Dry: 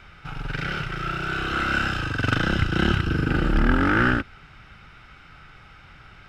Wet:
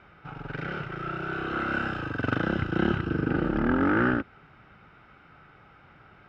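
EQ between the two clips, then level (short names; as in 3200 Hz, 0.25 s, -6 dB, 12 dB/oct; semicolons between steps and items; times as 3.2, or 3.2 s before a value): band-pass 440 Hz, Q 0.54; 0.0 dB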